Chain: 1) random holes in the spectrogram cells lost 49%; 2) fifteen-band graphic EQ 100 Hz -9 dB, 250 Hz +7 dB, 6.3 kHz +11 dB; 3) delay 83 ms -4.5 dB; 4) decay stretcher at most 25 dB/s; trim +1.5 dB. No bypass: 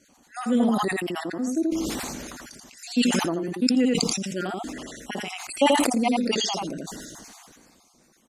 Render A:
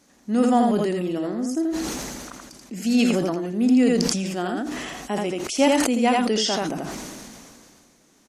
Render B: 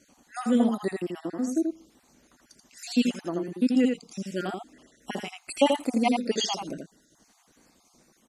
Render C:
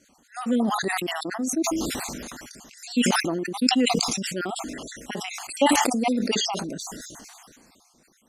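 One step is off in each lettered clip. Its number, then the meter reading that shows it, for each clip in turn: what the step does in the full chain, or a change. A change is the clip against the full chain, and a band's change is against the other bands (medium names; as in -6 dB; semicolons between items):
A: 1, 4 kHz band -3.0 dB; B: 4, momentary loudness spread change -4 LU; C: 3, 250 Hz band -3.0 dB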